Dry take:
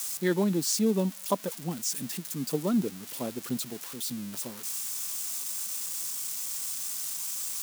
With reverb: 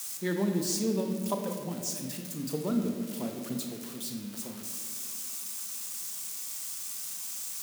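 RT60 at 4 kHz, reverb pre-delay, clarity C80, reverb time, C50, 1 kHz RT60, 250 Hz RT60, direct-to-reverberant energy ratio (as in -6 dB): 1.2 s, 30 ms, 6.5 dB, 2.3 s, 5.5 dB, 2.0 s, 3.0 s, 3.0 dB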